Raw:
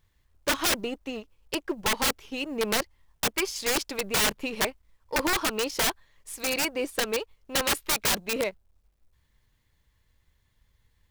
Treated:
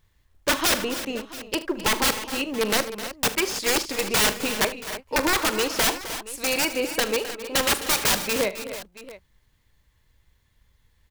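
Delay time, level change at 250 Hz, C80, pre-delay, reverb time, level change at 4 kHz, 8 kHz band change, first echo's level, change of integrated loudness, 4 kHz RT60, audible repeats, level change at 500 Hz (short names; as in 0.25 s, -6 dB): 41 ms, +4.0 dB, none, none, none, +4.0 dB, +4.0 dB, -15.0 dB, +4.0 dB, none, 5, +4.0 dB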